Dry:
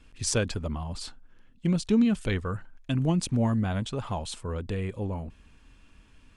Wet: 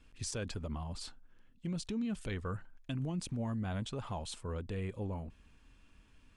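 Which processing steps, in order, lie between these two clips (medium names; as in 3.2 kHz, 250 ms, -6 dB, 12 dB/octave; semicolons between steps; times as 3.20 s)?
peak limiter -23.5 dBFS, peak gain reduction 10.5 dB; trim -6.5 dB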